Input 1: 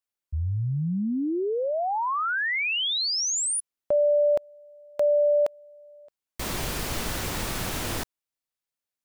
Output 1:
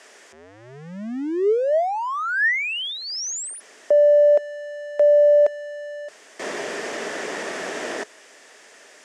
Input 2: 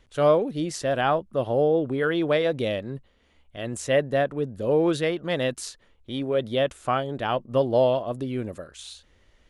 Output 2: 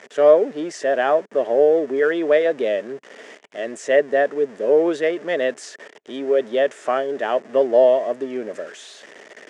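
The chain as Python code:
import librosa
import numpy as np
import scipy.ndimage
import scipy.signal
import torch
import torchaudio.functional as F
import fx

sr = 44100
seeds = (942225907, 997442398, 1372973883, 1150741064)

y = x + 0.5 * 10.0 ** (-36.0 / 20.0) * np.sign(x)
y = fx.cabinet(y, sr, low_hz=230.0, low_slope=24, high_hz=7700.0, hz=(420.0, 630.0, 1800.0, 4100.0), db=(10, 9, 10, -7))
y = y * librosa.db_to_amplitude(-2.0)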